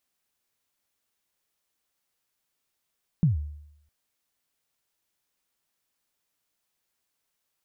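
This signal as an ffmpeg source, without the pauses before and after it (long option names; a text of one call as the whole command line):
ffmpeg -f lavfi -i "aevalsrc='0.178*pow(10,-3*t/0.78)*sin(2*PI*(180*0.138/log(74/180)*(exp(log(74/180)*min(t,0.138)/0.138)-1)+74*max(t-0.138,0)))':duration=0.66:sample_rate=44100" out.wav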